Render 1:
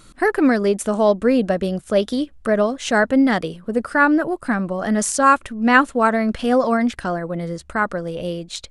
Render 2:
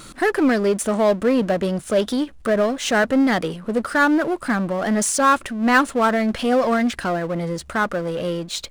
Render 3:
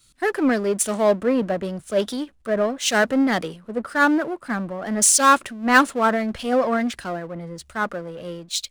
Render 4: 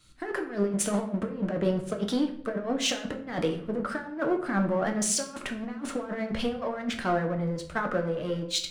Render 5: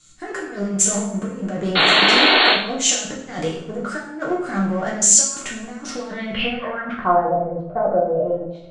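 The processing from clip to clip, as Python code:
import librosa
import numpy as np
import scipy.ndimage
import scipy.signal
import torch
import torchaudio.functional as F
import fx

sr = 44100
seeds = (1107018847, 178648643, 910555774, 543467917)

y1 = fx.low_shelf(x, sr, hz=85.0, db=-10.0)
y1 = fx.power_curve(y1, sr, exponent=0.7)
y1 = y1 * librosa.db_to_amplitude(-4.5)
y2 = fx.low_shelf(y1, sr, hz=62.0, db=-8.0)
y2 = fx.band_widen(y2, sr, depth_pct=100)
y2 = y2 * librosa.db_to_amplitude(-2.0)
y3 = fx.lowpass(y2, sr, hz=2900.0, slope=6)
y3 = fx.over_compress(y3, sr, threshold_db=-26.0, ratio=-0.5)
y3 = fx.room_shoebox(y3, sr, seeds[0], volume_m3=110.0, walls='mixed', distance_m=0.52)
y3 = y3 * librosa.db_to_amplitude(-3.5)
y4 = fx.filter_sweep_lowpass(y3, sr, from_hz=7200.0, to_hz=660.0, start_s=5.71, end_s=7.41, q=6.2)
y4 = fx.spec_paint(y4, sr, seeds[1], shape='noise', start_s=1.75, length_s=0.79, low_hz=250.0, high_hz=4500.0, level_db=-18.0)
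y4 = fx.rev_double_slope(y4, sr, seeds[2], early_s=0.52, late_s=1.6, knee_db=-24, drr_db=-2.5)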